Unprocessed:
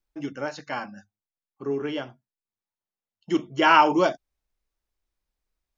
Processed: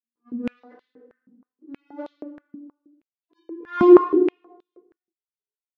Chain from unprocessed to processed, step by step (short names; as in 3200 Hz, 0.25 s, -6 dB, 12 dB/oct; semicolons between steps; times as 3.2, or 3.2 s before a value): vocoder on a gliding note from A#3, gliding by +11 st; spectral gate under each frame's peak -15 dB strong; high shelf 4300 Hz -11 dB; auto swell 0.441 s; power-law curve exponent 1.4; reverb RT60 1.2 s, pre-delay 3 ms, DRR -14.5 dB; stepped high-pass 6.3 Hz 220–3700 Hz; gain -12.5 dB